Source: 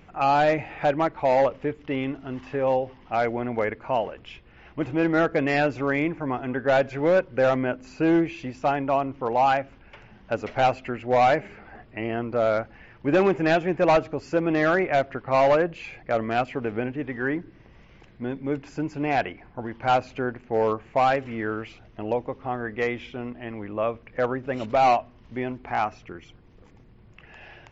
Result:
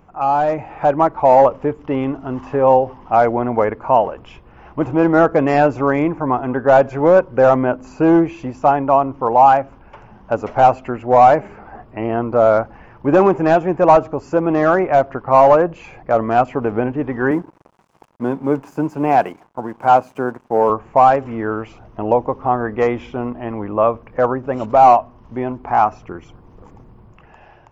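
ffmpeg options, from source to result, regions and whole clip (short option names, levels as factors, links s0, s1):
-filter_complex "[0:a]asettb=1/sr,asplit=3[s0][s1][s2];[s0]atrim=end=17.314[s3];[s1]atrim=start=17.31:end=20.7,asetpts=PTS-STARTPTS,afade=t=in:d=0.004:c=qsin,afade=t=out:st=3.386:d=0.004:c=qsin,highpass=f=130:w=0.5412,highpass=f=130:w=1.3066,aeval=exprs='sgn(val(0))*max(abs(val(0))-0.00282,0)':c=same[s4];[s2]atrim=start=20.696[s5];[s3][s4]acrossfade=d=0.004:c1=hsin:c2=qsin[s6];[s6][s5]acrossfade=d=0.004:c1=qsin:c2=hsin,equalizer=f=1000:t=o:w=1:g=8,equalizer=f=2000:t=o:w=1:g=-8,equalizer=f=4000:t=o:w=1:g=-10,dynaudnorm=f=120:g=13:m=3.76"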